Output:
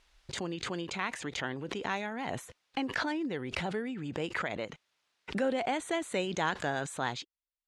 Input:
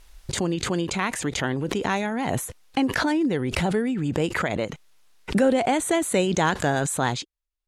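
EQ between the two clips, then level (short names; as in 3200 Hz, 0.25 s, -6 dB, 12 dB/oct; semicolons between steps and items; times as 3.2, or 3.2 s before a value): band-pass 4100 Hz, Q 0.61; tilt -4 dB/oct; 0.0 dB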